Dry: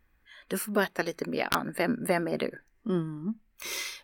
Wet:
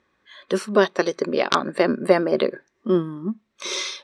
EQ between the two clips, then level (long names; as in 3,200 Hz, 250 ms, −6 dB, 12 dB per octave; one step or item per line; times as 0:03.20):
loudspeaker in its box 140–7,800 Hz, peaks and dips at 200 Hz +3 dB, 380 Hz +9 dB, 560 Hz +8 dB, 1,100 Hz +8 dB, 3,700 Hz +9 dB, 5,700 Hz +5 dB
+3.5 dB